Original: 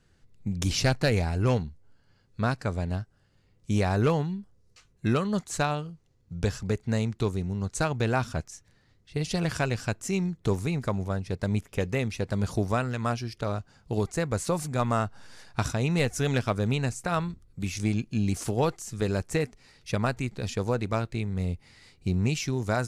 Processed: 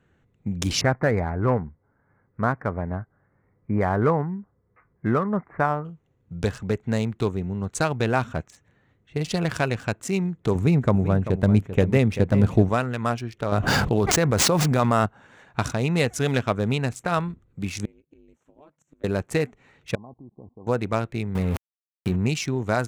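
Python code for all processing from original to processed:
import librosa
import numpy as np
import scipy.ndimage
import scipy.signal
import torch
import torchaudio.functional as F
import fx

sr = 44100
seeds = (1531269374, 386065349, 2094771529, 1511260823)

y = fx.chain(x, sr, fx.ellip_lowpass(hz=2100.0, order=4, stop_db=40),
    fx.peak_eq(hz=1100.0, db=3.5, octaves=0.75), at=(0.81, 5.85))
y = fx.chain(y, sr, fx.low_shelf(hz=440.0, db=8.5),
    fx.echo_single(ms=389, db=-11.5), at=(10.55, 12.69))
y = fx.chain(y, sr, fx.median_filter(points=5),
    fx.env_flatten(amount_pct=100), at=(13.52, 15.06))
y = fx.chain(y, sr, fx.gate_flip(shuts_db=-28.0, range_db=-28),
    fx.ring_mod(carrier_hz=150.0), at=(17.85, 19.04))
y = fx.chain(y, sr, fx.law_mismatch(coded='A'),
    fx.cheby_ripple(hz=1100.0, ripple_db=6),
    fx.level_steps(step_db=23), at=(19.95, 20.67))
y = fx.chain(y, sr, fx.hum_notches(base_hz=50, count=8),
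    fx.sample_gate(floor_db=-38.5),
    fx.env_flatten(amount_pct=100), at=(21.35, 22.16))
y = fx.wiener(y, sr, points=9)
y = fx.highpass(y, sr, hz=120.0, slope=6)
y = y * 10.0 ** (4.5 / 20.0)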